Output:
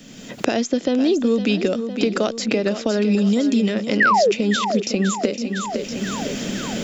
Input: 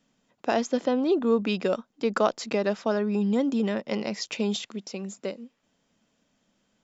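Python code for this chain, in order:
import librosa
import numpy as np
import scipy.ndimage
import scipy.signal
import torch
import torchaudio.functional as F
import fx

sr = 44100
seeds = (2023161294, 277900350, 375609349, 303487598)

y = fx.recorder_agc(x, sr, target_db=-16.5, rise_db_per_s=31.0, max_gain_db=30)
y = fx.peak_eq(y, sr, hz=980.0, db=-12.5, octaves=1.1)
y = fx.spec_paint(y, sr, seeds[0], shape='fall', start_s=4.0, length_s=0.32, low_hz=370.0, high_hz=2000.0, level_db=-19.0)
y = fx.echo_feedback(y, sr, ms=508, feedback_pct=53, wet_db=-12.0)
y = fx.band_squash(y, sr, depth_pct=70)
y = F.gain(torch.from_numpy(y), 6.0).numpy()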